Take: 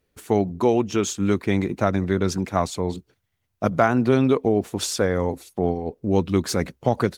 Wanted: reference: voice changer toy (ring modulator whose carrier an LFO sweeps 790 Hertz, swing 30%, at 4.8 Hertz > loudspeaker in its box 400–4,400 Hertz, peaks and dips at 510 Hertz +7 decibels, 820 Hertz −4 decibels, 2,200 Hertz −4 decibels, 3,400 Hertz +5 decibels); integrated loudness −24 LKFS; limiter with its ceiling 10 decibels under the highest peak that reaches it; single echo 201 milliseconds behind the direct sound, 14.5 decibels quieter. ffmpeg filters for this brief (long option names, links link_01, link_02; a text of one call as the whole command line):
ffmpeg -i in.wav -af "alimiter=limit=-13.5dB:level=0:latency=1,aecho=1:1:201:0.188,aeval=exprs='val(0)*sin(2*PI*790*n/s+790*0.3/4.8*sin(2*PI*4.8*n/s))':channel_layout=same,highpass=400,equalizer=frequency=510:width_type=q:width=4:gain=7,equalizer=frequency=820:width_type=q:width=4:gain=-4,equalizer=frequency=2200:width_type=q:width=4:gain=-4,equalizer=frequency=3400:width_type=q:width=4:gain=5,lowpass=frequency=4400:width=0.5412,lowpass=frequency=4400:width=1.3066,volume=5dB" out.wav